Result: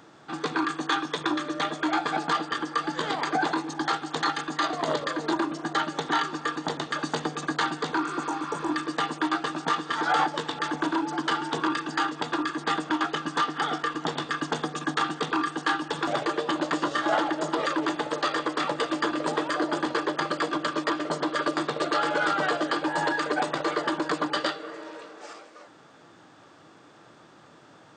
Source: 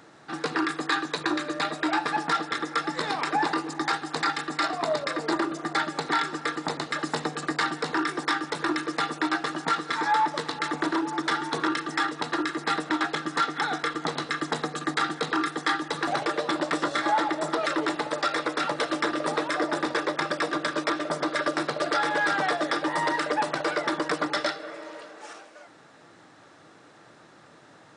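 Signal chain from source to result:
formants moved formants −2 semitones
healed spectral selection 0:08.05–0:08.68, 1,000–5,500 Hz both

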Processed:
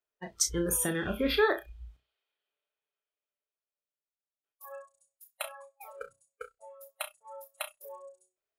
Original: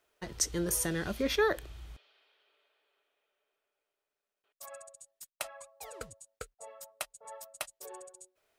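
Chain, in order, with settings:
flutter between parallel walls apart 5.6 metres, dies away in 0.26 s
noise reduction from a noise print of the clip's start 21 dB
level +2 dB

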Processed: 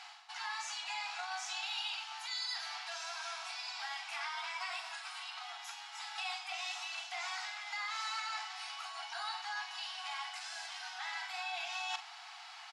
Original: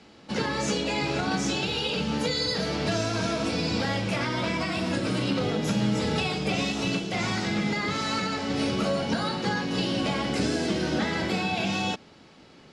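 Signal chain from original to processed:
reversed playback
downward compressor 12 to 1, threshold −40 dBFS, peak gain reduction 19 dB
reversed playback
linear-phase brick-wall high-pass 680 Hz
double-tracking delay 45 ms −12 dB
level +6 dB

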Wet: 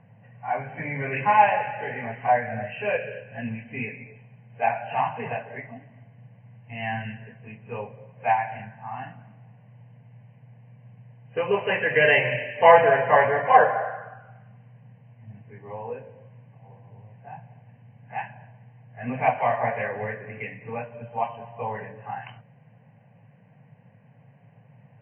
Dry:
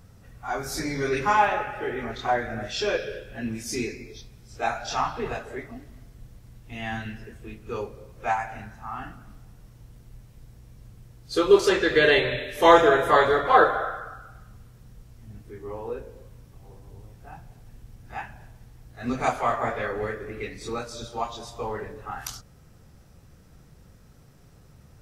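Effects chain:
phaser with its sweep stopped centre 1,300 Hz, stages 6
brick-wall band-pass 100–3,100 Hz
low-pass that shuts in the quiet parts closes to 2,300 Hz, open at −21.5 dBFS
level +4.5 dB

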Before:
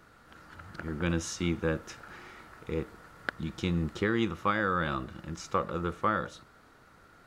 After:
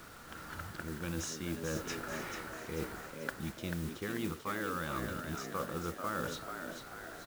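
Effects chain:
reversed playback
downward compressor 6 to 1, threshold −41 dBFS, peak gain reduction 17 dB
reversed playback
echo with shifted repeats 439 ms, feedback 50%, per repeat +79 Hz, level −6.5 dB
bit-depth reduction 10 bits, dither none
noise that follows the level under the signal 15 dB
level +5 dB

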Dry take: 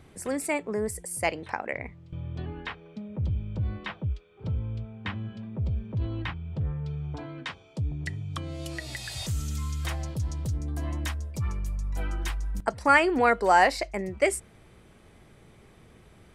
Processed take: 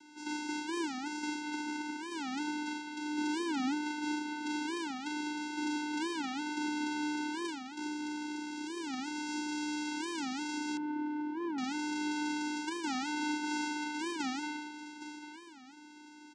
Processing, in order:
compressing power law on the bin magnitudes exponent 0.14
far-end echo of a speakerphone 200 ms, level −8 dB
downward compressor 4 to 1, threshold −34 dBFS, peak gain reduction 17 dB
single-tap delay 796 ms −10 dB
0:07.48–0:08.79: amplitude modulation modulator 65 Hz, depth 70%
four-comb reverb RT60 1 s, combs from 30 ms, DRR −1.5 dB
channel vocoder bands 8, square 300 Hz
0:10.77–0:11.60: low-pass filter 1,100 Hz 12 dB per octave
wow of a warped record 45 rpm, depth 250 cents

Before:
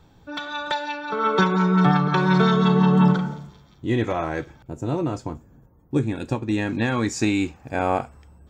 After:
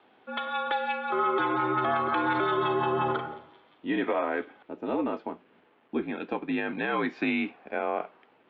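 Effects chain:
bit-depth reduction 10 bits, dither none
single-sideband voice off tune −55 Hz 350–3,300 Hz
brickwall limiter −18 dBFS, peak gain reduction 9.5 dB

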